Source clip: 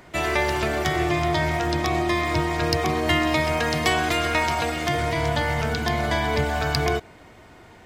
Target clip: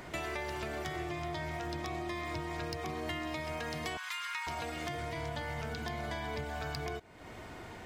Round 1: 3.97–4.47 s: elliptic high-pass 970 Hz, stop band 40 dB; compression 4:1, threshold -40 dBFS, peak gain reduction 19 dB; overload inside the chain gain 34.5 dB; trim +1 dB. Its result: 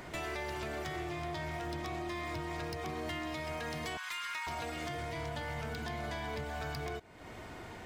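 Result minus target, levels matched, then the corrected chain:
overload inside the chain: distortion +16 dB
3.97–4.47 s: elliptic high-pass 970 Hz, stop band 40 dB; compression 4:1, threshold -40 dBFS, peak gain reduction 19 dB; overload inside the chain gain 27 dB; trim +1 dB

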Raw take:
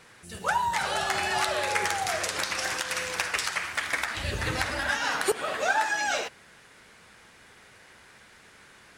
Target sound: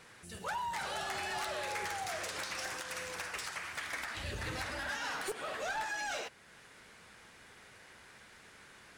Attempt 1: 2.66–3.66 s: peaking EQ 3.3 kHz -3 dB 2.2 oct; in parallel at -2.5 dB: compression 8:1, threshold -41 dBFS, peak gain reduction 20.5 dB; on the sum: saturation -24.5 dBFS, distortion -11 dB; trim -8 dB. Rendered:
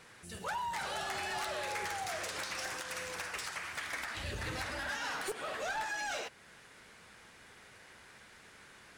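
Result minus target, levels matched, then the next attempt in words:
compression: peak gain reduction -5 dB
2.66–3.66 s: peaking EQ 3.3 kHz -3 dB 2.2 oct; in parallel at -2.5 dB: compression 8:1, threshold -47 dBFS, peak gain reduction 25.5 dB; on the sum: saturation -24.5 dBFS, distortion -12 dB; trim -8 dB

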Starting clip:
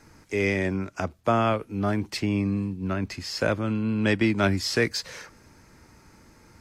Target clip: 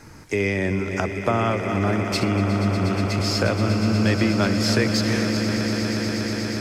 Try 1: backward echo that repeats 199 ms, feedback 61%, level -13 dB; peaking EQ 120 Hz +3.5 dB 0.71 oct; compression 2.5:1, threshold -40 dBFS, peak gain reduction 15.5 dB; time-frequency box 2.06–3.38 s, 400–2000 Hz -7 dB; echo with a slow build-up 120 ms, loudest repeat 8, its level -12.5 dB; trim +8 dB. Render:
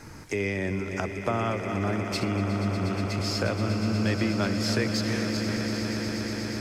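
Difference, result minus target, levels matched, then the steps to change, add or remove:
compression: peak gain reduction +6 dB
change: compression 2.5:1, threshold -30 dBFS, peak gain reduction 9.5 dB

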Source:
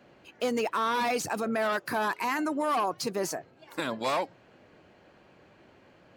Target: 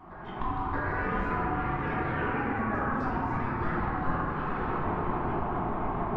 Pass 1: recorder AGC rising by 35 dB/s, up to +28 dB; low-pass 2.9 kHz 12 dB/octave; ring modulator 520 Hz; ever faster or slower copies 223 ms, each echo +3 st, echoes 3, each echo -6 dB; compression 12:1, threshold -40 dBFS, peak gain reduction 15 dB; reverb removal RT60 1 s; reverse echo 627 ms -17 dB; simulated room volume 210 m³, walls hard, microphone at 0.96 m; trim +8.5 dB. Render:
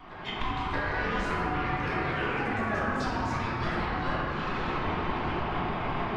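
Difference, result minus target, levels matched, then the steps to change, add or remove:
4 kHz band +13.5 dB
change: low-pass 830 Hz 12 dB/octave

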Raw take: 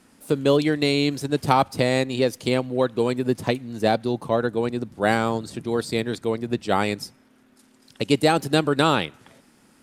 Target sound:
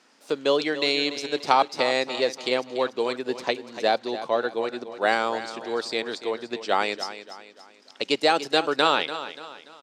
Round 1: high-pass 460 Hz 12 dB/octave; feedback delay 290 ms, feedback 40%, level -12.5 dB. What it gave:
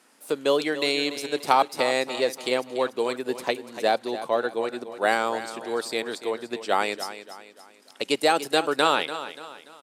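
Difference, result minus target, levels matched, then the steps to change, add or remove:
8 kHz band +4.5 dB
add after high-pass: resonant high shelf 8 kHz -13.5 dB, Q 1.5

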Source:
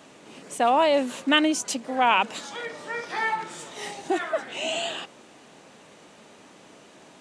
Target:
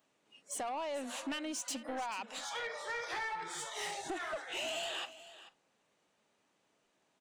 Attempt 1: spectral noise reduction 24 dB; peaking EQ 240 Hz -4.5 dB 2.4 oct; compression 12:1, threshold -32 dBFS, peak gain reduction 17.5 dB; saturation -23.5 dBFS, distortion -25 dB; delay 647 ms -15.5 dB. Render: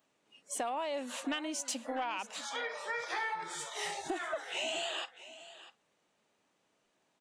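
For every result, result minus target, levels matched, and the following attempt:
echo 210 ms late; saturation: distortion -12 dB
spectral noise reduction 24 dB; peaking EQ 240 Hz -4.5 dB 2.4 oct; compression 12:1, threshold -32 dBFS, peak gain reduction 17.5 dB; saturation -23.5 dBFS, distortion -25 dB; delay 437 ms -15.5 dB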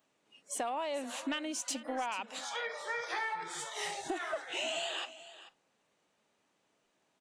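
saturation: distortion -12 dB
spectral noise reduction 24 dB; peaking EQ 240 Hz -4.5 dB 2.4 oct; compression 12:1, threshold -32 dBFS, peak gain reduction 17.5 dB; saturation -33 dBFS, distortion -12 dB; delay 437 ms -15.5 dB

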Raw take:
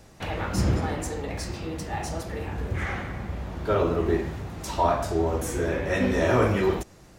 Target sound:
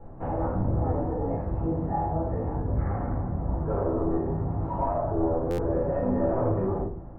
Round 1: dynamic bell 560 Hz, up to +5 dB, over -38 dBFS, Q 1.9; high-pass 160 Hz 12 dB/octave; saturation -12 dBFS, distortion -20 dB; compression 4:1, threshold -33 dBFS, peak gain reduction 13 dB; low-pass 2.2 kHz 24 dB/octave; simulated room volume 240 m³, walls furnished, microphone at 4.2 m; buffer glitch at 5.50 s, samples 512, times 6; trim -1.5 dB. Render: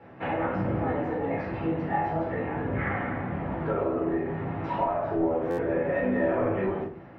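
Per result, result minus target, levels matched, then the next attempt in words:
2 kHz band +15.5 dB; saturation: distortion -12 dB; 125 Hz band -5.0 dB
dynamic bell 560 Hz, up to +5 dB, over -38 dBFS, Q 1.9; high-pass 160 Hz 12 dB/octave; saturation -12 dBFS, distortion -20 dB; compression 4:1, threshold -33 dBFS, peak gain reduction 13 dB; low-pass 1.1 kHz 24 dB/octave; simulated room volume 240 m³, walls furnished, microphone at 4.2 m; buffer glitch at 5.50 s, samples 512, times 6; trim -1.5 dB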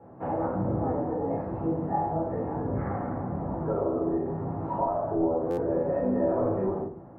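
saturation: distortion -12 dB; 125 Hz band -4.5 dB
dynamic bell 560 Hz, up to +5 dB, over -38 dBFS, Q 1.9; high-pass 160 Hz 12 dB/octave; saturation -23 dBFS, distortion -8 dB; compression 4:1, threshold -33 dBFS, peak gain reduction 7.5 dB; low-pass 1.1 kHz 24 dB/octave; simulated room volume 240 m³, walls furnished, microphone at 4.2 m; buffer glitch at 5.50 s, samples 512, times 6; trim -1.5 dB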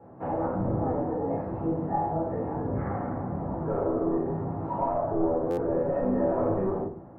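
125 Hz band -4.5 dB
dynamic bell 560 Hz, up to +5 dB, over -38 dBFS, Q 1.9; saturation -23 dBFS, distortion -8 dB; compression 4:1, threshold -33 dBFS, peak gain reduction 7 dB; low-pass 1.1 kHz 24 dB/octave; simulated room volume 240 m³, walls furnished, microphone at 4.2 m; buffer glitch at 5.50 s, samples 512, times 6; trim -1.5 dB

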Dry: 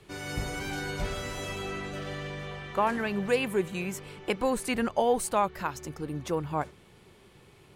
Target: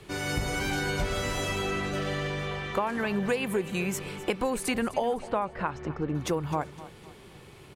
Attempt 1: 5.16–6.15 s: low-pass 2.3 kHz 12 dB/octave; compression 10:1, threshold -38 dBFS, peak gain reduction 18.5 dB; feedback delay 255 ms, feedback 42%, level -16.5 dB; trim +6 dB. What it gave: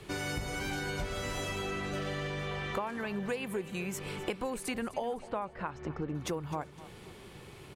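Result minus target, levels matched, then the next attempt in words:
compression: peak gain reduction +7 dB
5.16–6.15 s: low-pass 2.3 kHz 12 dB/octave; compression 10:1, threshold -30 dBFS, peak gain reduction 11 dB; feedback delay 255 ms, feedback 42%, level -16.5 dB; trim +6 dB

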